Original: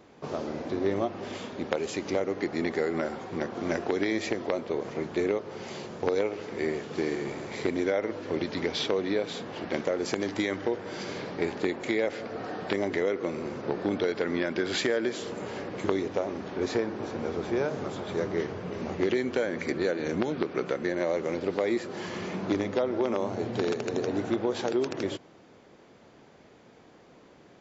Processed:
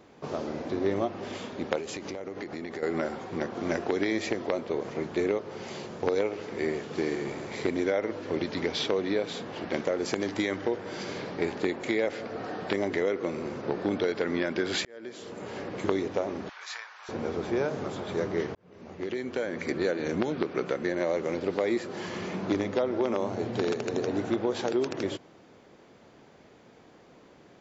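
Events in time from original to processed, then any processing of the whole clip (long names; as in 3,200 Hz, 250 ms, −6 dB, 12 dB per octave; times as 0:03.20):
0:01.78–0:02.83: downward compressor 12 to 1, threshold −32 dBFS
0:14.85–0:15.68: fade in
0:16.49–0:17.09: inverse Chebyshev high-pass filter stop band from 240 Hz, stop band 70 dB
0:18.55–0:19.78: fade in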